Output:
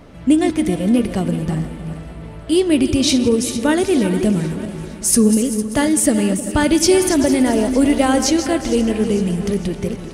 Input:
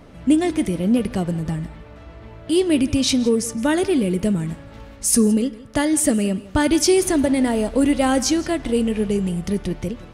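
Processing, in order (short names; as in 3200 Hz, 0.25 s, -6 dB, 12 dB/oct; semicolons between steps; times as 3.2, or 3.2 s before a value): regenerating reverse delay 0.194 s, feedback 53%, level -10 dB; split-band echo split 740 Hz, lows 0.313 s, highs 0.456 s, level -15.5 dB; gain +2.5 dB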